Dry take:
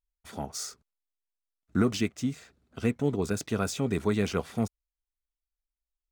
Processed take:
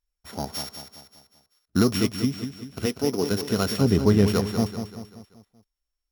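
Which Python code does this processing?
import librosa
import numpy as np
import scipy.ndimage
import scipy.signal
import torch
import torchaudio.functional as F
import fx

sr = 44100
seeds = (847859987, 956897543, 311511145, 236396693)

y = np.r_[np.sort(x[:len(x) // 8 * 8].reshape(-1, 8), axis=1).ravel(), x[len(x) // 8 * 8:]]
y = fx.level_steps(y, sr, step_db=21, at=(0.62, 1.76))
y = fx.highpass(y, sr, hz=fx.line((2.85, 350.0), (3.3, 170.0)), slope=12, at=(2.85, 3.3), fade=0.02)
y = fx.tilt_eq(y, sr, slope=-2.0, at=(3.81, 4.28))
y = fx.echo_feedback(y, sr, ms=193, feedback_pct=47, wet_db=-8.5)
y = y * 10.0 ** (4.5 / 20.0)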